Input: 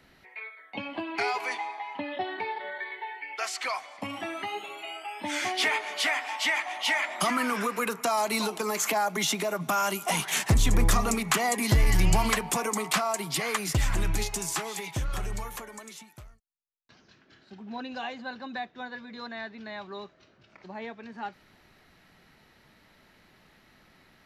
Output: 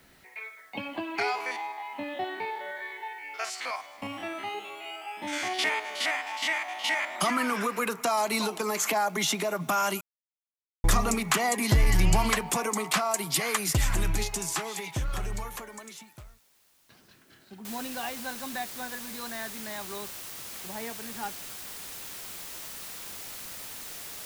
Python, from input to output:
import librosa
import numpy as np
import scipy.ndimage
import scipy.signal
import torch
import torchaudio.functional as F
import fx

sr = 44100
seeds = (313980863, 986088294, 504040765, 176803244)

y = fx.spec_steps(x, sr, hold_ms=50, at=(1.33, 7.14), fade=0.02)
y = fx.high_shelf(y, sr, hz=7300.0, db=8.0, at=(13.11, 14.13))
y = fx.noise_floor_step(y, sr, seeds[0], at_s=17.65, before_db=-65, after_db=-41, tilt_db=0.0)
y = fx.edit(y, sr, fx.silence(start_s=10.01, length_s=0.83), tone=tone)